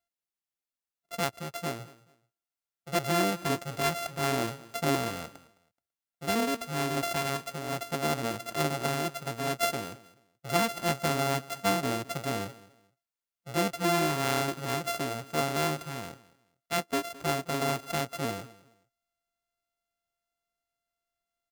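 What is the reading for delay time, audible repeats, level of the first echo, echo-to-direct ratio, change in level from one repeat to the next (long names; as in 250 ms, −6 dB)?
214 ms, 2, −20.0 dB, −19.5 dB, −12.0 dB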